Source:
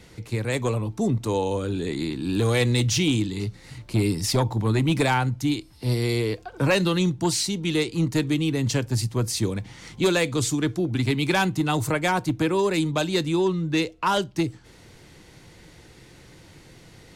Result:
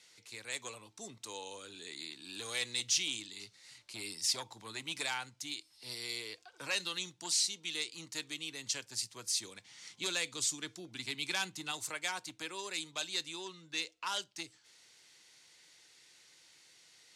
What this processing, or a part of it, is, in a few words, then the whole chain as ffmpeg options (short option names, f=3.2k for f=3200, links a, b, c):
piezo pickup straight into a mixer: -filter_complex "[0:a]lowpass=6.6k,aderivative,asettb=1/sr,asplit=3[a][b][c];[a]atrim=end=9.714[d];[b]atrim=start=9.71:end=11.72,asetpts=PTS-STARTPTS,afade=t=in:d=0.004:c=qsin,afade=t=out:st=2.006:d=0.004:c=qsin,equalizer=f=170:t=o:w=2.1:g=5.5[e];[c]atrim=start=11.716[f];[d][e]acrossfade=d=0.004:c1=hsin:c2=qsin[g];[g][f]acrossfade=d=0.004:c1=qsin:c2=hsin"